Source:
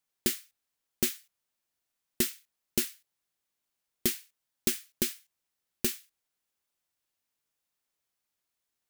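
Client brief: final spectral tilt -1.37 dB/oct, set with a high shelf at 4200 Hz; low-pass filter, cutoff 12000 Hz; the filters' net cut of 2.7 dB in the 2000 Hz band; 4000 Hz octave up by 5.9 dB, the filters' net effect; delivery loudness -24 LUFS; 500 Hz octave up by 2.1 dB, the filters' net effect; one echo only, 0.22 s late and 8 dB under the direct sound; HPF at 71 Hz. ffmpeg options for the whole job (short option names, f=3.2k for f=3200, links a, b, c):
-af "highpass=71,lowpass=12k,equalizer=f=500:t=o:g=3.5,equalizer=f=2k:t=o:g=-7.5,equalizer=f=4k:t=o:g=5,highshelf=f=4.2k:g=7,aecho=1:1:220:0.398,volume=6dB"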